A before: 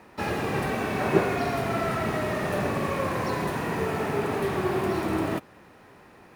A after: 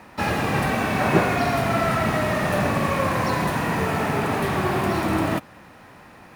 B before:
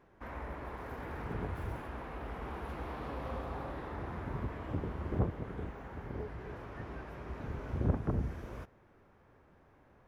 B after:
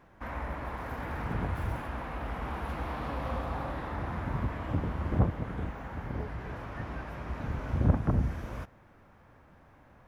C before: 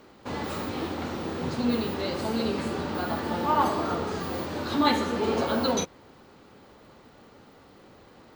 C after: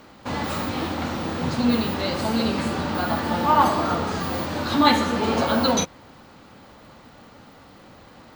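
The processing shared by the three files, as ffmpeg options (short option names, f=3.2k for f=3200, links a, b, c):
-af "equalizer=f=400:t=o:w=0.5:g=-8,volume=6.5dB"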